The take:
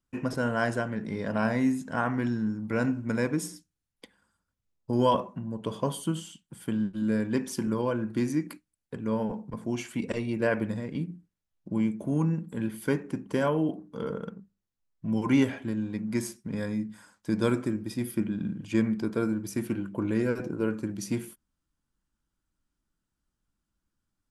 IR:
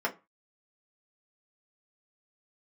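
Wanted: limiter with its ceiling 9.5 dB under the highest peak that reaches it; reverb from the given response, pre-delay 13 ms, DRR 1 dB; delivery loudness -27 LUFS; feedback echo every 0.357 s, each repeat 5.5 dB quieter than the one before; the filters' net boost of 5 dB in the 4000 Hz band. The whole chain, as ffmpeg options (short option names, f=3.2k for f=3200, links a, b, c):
-filter_complex "[0:a]equalizer=f=4k:t=o:g=7,alimiter=limit=-21dB:level=0:latency=1,aecho=1:1:357|714|1071|1428|1785|2142|2499:0.531|0.281|0.149|0.079|0.0419|0.0222|0.0118,asplit=2[a][b];[1:a]atrim=start_sample=2205,adelay=13[c];[b][c]afir=irnorm=-1:irlink=0,volume=-9.5dB[d];[a][d]amix=inputs=2:normalize=0,volume=2dB"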